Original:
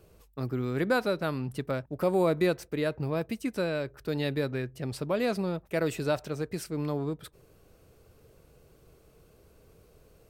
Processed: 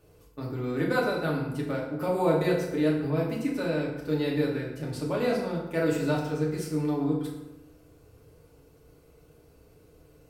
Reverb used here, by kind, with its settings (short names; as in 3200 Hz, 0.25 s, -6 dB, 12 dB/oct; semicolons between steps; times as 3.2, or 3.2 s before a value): FDN reverb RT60 1 s, low-frequency decay 1.1×, high-frequency decay 0.65×, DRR -4 dB; gain -4.5 dB